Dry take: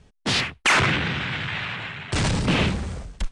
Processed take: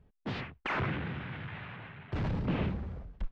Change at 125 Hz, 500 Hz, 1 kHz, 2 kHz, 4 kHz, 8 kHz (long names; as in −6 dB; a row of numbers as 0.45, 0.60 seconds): −9.0 dB, −10.5 dB, −13.0 dB, −16.5 dB, −22.5 dB, below −35 dB